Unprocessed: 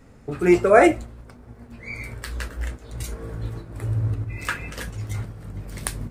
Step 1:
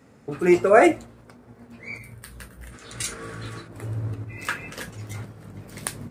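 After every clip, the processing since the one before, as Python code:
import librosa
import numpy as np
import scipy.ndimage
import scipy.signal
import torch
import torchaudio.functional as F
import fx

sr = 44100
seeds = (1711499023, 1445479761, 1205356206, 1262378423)

y = fx.spec_box(x, sr, start_s=1.98, length_s=0.77, low_hz=220.0, high_hz=8400.0, gain_db=-9)
y = scipy.signal.sosfilt(scipy.signal.butter(2, 130.0, 'highpass', fs=sr, output='sos'), y)
y = fx.spec_box(y, sr, start_s=2.72, length_s=0.95, low_hz=1100.0, high_hz=11000.0, gain_db=10)
y = y * librosa.db_to_amplitude(-1.0)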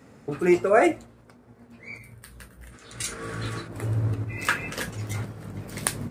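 y = fx.rider(x, sr, range_db=4, speed_s=0.5)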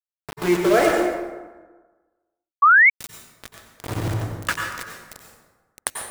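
y = np.where(np.abs(x) >= 10.0 ** (-22.5 / 20.0), x, 0.0)
y = fx.rev_plate(y, sr, seeds[0], rt60_s=1.3, hf_ratio=0.55, predelay_ms=80, drr_db=1.0)
y = fx.spec_paint(y, sr, seeds[1], shape='rise', start_s=2.62, length_s=0.28, low_hz=1100.0, high_hz=2300.0, level_db=-12.0)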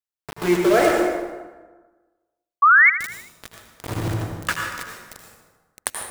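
y = fx.echo_feedback(x, sr, ms=78, feedback_pct=52, wet_db=-12.0)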